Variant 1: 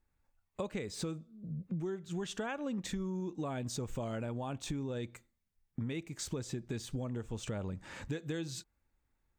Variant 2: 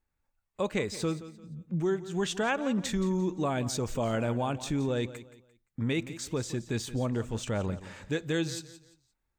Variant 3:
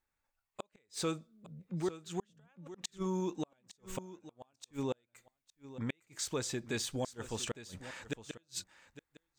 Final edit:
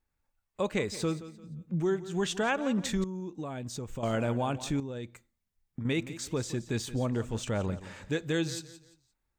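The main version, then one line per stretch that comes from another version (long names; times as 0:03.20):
2
0:03.04–0:04.03: punch in from 1
0:04.80–0:05.85: punch in from 1
not used: 3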